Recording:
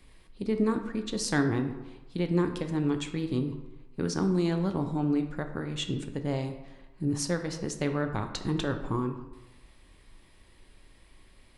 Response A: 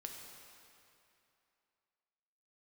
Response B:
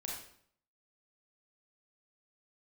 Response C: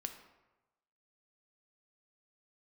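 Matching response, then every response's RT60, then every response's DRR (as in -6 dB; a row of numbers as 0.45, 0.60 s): C; 2.8, 0.60, 1.1 s; 1.0, -3.0, 6.0 dB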